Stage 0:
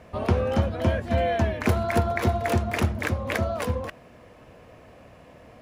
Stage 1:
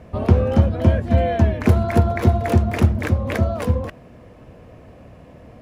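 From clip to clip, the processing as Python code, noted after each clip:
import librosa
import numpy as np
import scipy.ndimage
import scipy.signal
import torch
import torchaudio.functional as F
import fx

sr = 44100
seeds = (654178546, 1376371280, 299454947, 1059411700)

y = fx.low_shelf(x, sr, hz=480.0, db=10.5)
y = y * librosa.db_to_amplitude(-1.0)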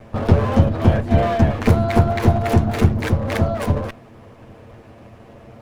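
y = fx.lower_of_two(x, sr, delay_ms=8.9)
y = y * librosa.db_to_amplitude(2.5)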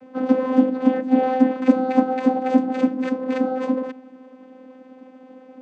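y = fx.vocoder(x, sr, bands=16, carrier='saw', carrier_hz=258.0)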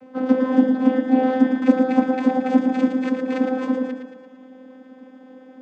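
y = fx.echo_feedback(x, sr, ms=113, feedback_pct=54, wet_db=-6.5)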